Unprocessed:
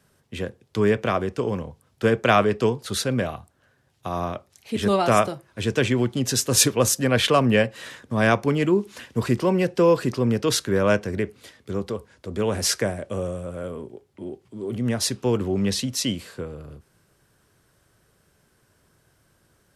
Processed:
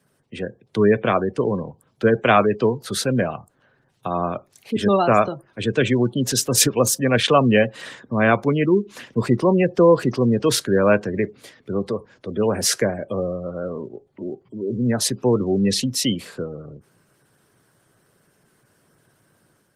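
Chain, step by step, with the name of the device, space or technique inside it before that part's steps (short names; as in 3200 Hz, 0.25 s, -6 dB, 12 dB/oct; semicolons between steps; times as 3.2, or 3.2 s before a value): noise-suppressed video call (HPF 110 Hz 24 dB/oct; spectral gate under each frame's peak -25 dB strong; AGC gain up to 4.5 dB; Opus 24 kbps 48000 Hz)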